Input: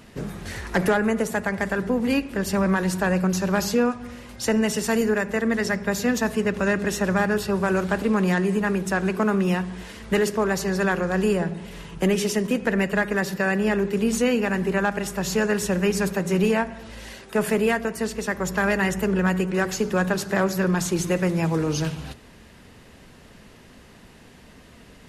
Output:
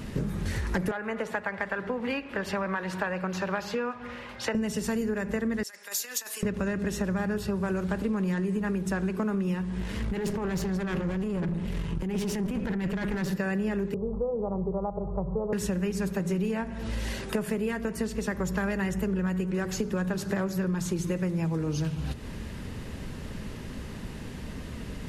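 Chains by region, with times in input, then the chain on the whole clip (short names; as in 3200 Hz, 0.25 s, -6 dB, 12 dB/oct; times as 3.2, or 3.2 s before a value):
0.91–4.55 HPF 110 Hz 6 dB/oct + three-band isolator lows -15 dB, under 540 Hz, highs -18 dB, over 3800 Hz
5.63–6.43 HPF 440 Hz + negative-ratio compressor -27 dBFS, ratio -0.5 + differentiator
9.77–13.31 tone controls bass +3 dB, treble -4 dB + negative-ratio compressor -25 dBFS + tube stage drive 26 dB, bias 0.65
13.94–15.53 steep low-pass 1400 Hz 96 dB/oct + fixed phaser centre 640 Hz, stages 4
whole clip: low shelf 270 Hz +10 dB; notch 710 Hz, Q 12; compressor 6:1, threshold -32 dBFS; gain +4.5 dB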